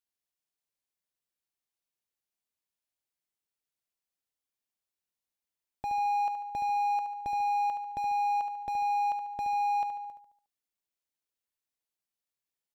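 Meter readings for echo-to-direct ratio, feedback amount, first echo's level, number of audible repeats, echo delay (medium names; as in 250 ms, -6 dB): -7.0 dB, 47%, -8.0 dB, 5, 72 ms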